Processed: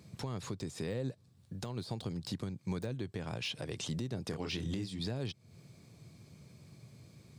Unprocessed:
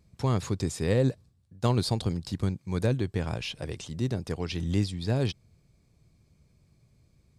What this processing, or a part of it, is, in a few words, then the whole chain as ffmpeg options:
broadcast voice chain: -filter_complex "[0:a]asettb=1/sr,asplit=3[link_01][link_02][link_03];[link_01]atrim=end=4.294[link_04];[link_02]atrim=start=4.29:end=4.99,asetpts=PTS-STARTPTS,afade=type=in:duration=0.004:curve=qsin,afade=type=out:start_time=0.696:duration=0.004:curve=qsin,asplit=2[link_05][link_06];[link_06]adelay=26,volume=-3.5dB[link_07];[link_05][link_07]amix=inputs=2:normalize=0,atrim=end_sample=30870[link_08];[link_03]atrim=start=4.986[link_09];[link_04][link_08]acrossfade=duration=0.004:curve1=hsin:curve2=qsin[link_10];[link_10][link_09]acrossfade=duration=0.004:curve1=qsin:curve2=hsin,highpass=frequency=100:width=0.5412,highpass=frequency=100:width=1.3066,deesser=0.9,acompressor=threshold=-42dB:ratio=5,equalizer=frequency=3700:width_type=o:width=0.77:gain=2,alimiter=level_in=12.5dB:limit=-24dB:level=0:latency=1:release=335,volume=-12.5dB,volume=9.5dB"

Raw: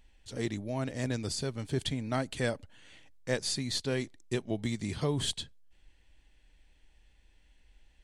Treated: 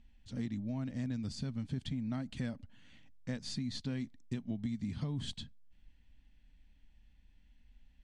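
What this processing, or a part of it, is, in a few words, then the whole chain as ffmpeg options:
jukebox: -af "lowpass=5900,lowshelf=frequency=300:width_type=q:width=3:gain=7,acompressor=threshold=-27dB:ratio=5,volume=-7dB"

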